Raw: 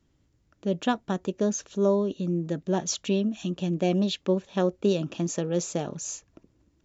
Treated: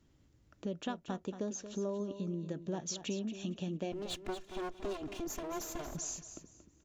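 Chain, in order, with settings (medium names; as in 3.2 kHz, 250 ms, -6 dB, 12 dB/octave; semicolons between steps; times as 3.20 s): 3.92–5.95 s: comb filter that takes the minimum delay 2.9 ms; compression 3:1, threshold -39 dBFS, peak gain reduction 16 dB; feedback delay 230 ms, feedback 26%, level -11 dB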